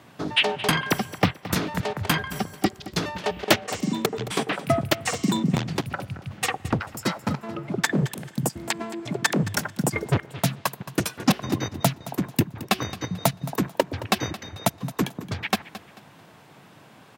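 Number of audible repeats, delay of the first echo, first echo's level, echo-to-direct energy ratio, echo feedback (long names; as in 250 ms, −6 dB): 2, 220 ms, −16.0 dB, −15.5 dB, 30%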